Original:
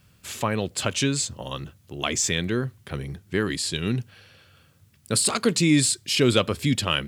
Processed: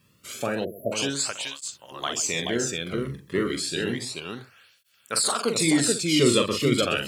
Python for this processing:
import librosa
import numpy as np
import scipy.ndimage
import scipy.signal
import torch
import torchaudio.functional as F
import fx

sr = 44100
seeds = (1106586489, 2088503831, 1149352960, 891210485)

y = fx.echo_multitap(x, sr, ms=(43, 130, 430, 492), db=(-5.5, -14.0, -3.5, -16.0))
y = fx.spec_erase(y, sr, start_s=0.65, length_s=0.27, low_hz=690.0, high_hz=11000.0)
y = fx.dynamic_eq(y, sr, hz=970.0, q=0.71, threshold_db=-44.0, ratio=4.0, max_db=6, at=(3.99, 5.31))
y = fx.flanger_cancel(y, sr, hz=0.31, depth_ms=1.4)